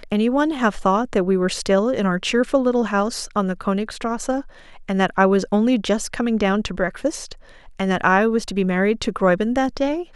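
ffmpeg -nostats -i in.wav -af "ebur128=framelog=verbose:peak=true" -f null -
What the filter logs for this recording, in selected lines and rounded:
Integrated loudness:
  I:         -20.3 LUFS
  Threshold: -30.5 LUFS
Loudness range:
  LRA:         1.5 LU
  Threshold: -40.9 LUFS
  LRA low:   -21.4 LUFS
  LRA high:  -19.9 LUFS
True peak:
  Peak:       -2.9 dBFS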